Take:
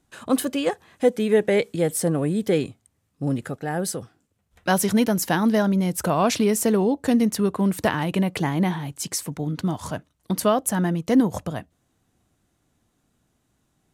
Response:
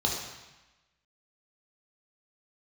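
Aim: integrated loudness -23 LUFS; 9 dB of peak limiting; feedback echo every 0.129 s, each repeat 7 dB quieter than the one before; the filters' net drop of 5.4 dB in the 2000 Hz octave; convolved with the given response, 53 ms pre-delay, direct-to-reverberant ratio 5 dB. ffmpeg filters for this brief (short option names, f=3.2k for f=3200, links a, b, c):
-filter_complex "[0:a]equalizer=f=2k:t=o:g=-7,alimiter=limit=-17dB:level=0:latency=1,aecho=1:1:129|258|387|516|645:0.447|0.201|0.0905|0.0407|0.0183,asplit=2[a][b];[1:a]atrim=start_sample=2205,adelay=53[c];[b][c]afir=irnorm=-1:irlink=0,volume=-14dB[d];[a][d]amix=inputs=2:normalize=0,volume=0.5dB"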